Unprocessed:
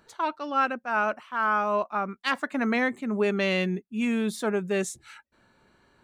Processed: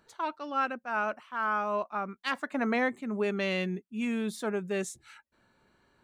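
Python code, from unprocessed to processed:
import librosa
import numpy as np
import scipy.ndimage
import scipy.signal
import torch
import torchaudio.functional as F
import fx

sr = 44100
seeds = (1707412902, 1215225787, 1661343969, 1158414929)

y = fx.peak_eq(x, sr, hz=680.0, db=5.0, octaves=1.8, at=(2.5, 2.9))
y = y * 10.0 ** (-5.0 / 20.0)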